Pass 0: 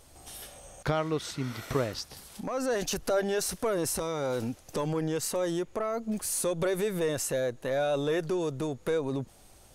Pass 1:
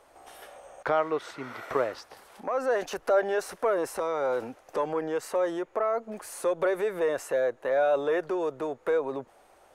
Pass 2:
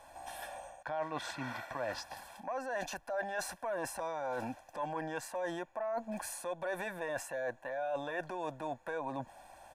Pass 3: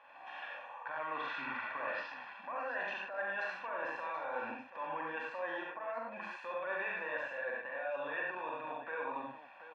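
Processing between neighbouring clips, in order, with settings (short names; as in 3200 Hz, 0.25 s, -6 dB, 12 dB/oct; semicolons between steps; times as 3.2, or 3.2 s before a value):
three-band isolator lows -22 dB, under 390 Hz, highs -17 dB, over 2100 Hz; gain +6 dB
comb 1.2 ms, depth 90%; reverse; compressor 6:1, threshold -35 dBFS, peak gain reduction 16 dB; reverse
spectral repair 0.52–0.81, 440–1200 Hz; speaker cabinet 330–3200 Hz, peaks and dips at 340 Hz -5 dB, 680 Hz -9 dB, 1200 Hz +7 dB, 1800 Hz +3 dB, 2600 Hz +8 dB; tapped delay 44/70/91/106/149/731 ms -4/-3.5/-4/-5/-9/-11.5 dB; gain -4 dB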